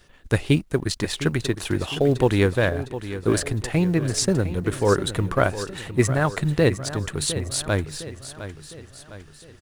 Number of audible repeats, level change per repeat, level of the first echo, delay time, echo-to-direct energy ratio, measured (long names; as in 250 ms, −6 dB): 4, −6.0 dB, −12.5 dB, 708 ms, −11.5 dB